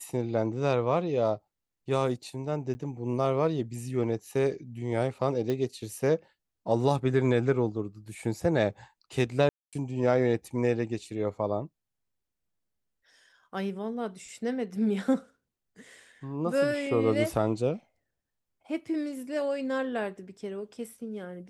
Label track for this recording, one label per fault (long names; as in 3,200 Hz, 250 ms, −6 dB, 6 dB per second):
2.740000	2.750000	drop-out 10 ms
5.500000	5.500000	click −19 dBFS
9.490000	9.730000	drop-out 237 ms